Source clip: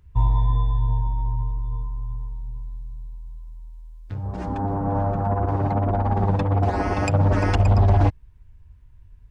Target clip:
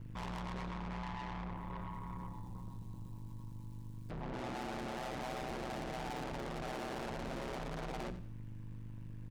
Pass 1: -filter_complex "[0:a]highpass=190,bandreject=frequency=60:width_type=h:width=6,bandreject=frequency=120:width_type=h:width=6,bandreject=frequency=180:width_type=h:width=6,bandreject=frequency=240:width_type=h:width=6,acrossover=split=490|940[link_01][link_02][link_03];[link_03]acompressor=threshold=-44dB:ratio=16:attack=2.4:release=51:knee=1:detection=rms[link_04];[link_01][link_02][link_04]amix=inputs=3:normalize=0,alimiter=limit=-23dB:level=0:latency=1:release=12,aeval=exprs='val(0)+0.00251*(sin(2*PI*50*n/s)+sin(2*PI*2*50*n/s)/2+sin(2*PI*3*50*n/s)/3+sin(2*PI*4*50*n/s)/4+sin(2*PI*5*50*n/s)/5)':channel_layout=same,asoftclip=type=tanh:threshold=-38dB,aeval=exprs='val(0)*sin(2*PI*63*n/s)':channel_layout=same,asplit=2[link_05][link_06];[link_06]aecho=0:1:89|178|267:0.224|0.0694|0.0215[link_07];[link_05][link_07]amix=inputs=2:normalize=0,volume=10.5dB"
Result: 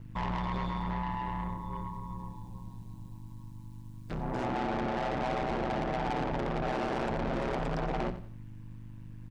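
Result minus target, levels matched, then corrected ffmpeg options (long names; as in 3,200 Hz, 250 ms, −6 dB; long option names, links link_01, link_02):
downward compressor: peak gain reduction −10.5 dB; soft clipping: distortion −4 dB
-filter_complex "[0:a]highpass=190,bandreject=frequency=60:width_type=h:width=6,bandreject=frequency=120:width_type=h:width=6,bandreject=frequency=180:width_type=h:width=6,bandreject=frequency=240:width_type=h:width=6,acrossover=split=490|940[link_01][link_02][link_03];[link_03]acompressor=threshold=-55dB:ratio=16:attack=2.4:release=51:knee=1:detection=rms[link_04];[link_01][link_02][link_04]amix=inputs=3:normalize=0,alimiter=limit=-23dB:level=0:latency=1:release=12,aeval=exprs='val(0)+0.00251*(sin(2*PI*50*n/s)+sin(2*PI*2*50*n/s)/2+sin(2*PI*3*50*n/s)/3+sin(2*PI*4*50*n/s)/4+sin(2*PI*5*50*n/s)/5)':channel_layout=same,asoftclip=type=tanh:threshold=-48.5dB,aeval=exprs='val(0)*sin(2*PI*63*n/s)':channel_layout=same,asplit=2[link_05][link_06];[link_06]aecho=0:1:89|178|267:0.224|0.0694|0.0215[link_07];[link_05][link_07]amix=inputs=2:normalize=0,volume=10.5dB"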